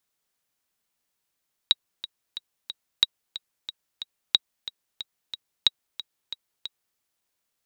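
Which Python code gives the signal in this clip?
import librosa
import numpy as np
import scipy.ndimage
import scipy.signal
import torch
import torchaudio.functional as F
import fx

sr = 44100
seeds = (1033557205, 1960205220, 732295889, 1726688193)

y = fx.click_track(sr, bpm=182, beats=4, bars=4, hz=3830.0, accent_db=15.5, level_db=-4.0)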